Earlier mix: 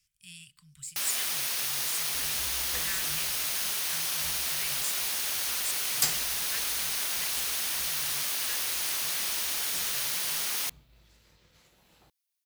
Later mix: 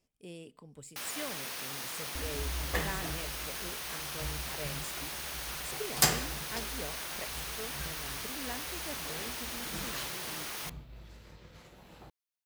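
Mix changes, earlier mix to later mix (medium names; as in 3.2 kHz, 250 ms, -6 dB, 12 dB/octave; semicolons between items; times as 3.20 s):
speech: remove inverse Chebyshev band-stop 290–750 Hz, stop band 50 dB; second sound +11.5 dB; master: add treble shelf 2.3 kHz -11.5 dB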